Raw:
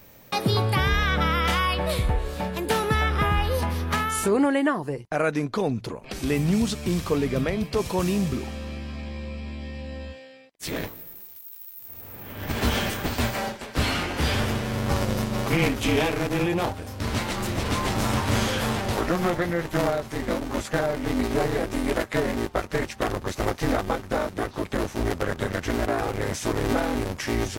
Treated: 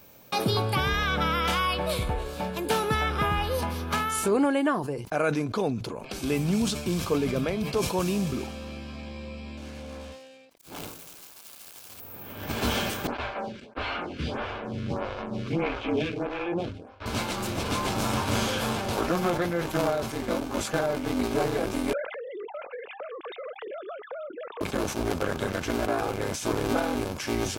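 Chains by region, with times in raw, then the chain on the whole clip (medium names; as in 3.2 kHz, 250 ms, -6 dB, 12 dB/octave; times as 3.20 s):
9.57–12.00 s: self-modulated delay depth 0.95 ms + slow attack 297 ms
13.07–17.06 s: low-pass 3.1 kHz + expander -29 dBFS + lamp-driven phase shifter 1.6 Hz
21.93–24.61 s: formants replaced by sine waves + compression 12:1, threshold -32 dBFS
whole clip: bass shelf 100 Hz -8.5 dB; band-stop 1.9 kHz, Q 6.4; decay stretcher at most 68 dB/s; trim -1.5 dB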